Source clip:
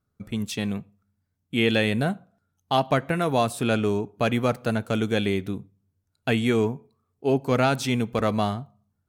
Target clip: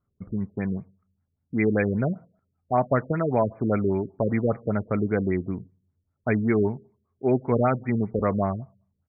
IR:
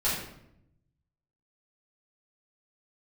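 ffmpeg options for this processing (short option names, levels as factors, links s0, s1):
-af "asetrate=41625,aresample=44100,atempo=1.05946,afftfilt=real='re*lt(b*sr/1024,540*pow(2500/540,0.5+0.5*sin(2*PI*5.1*pts/sr)))':imag='im*lt(b*sr/1024,540*pow(2500/540,0.5+0.5*sin(2*PI*5.1*pts/sr)))':win_size=1024:overlap=0.75"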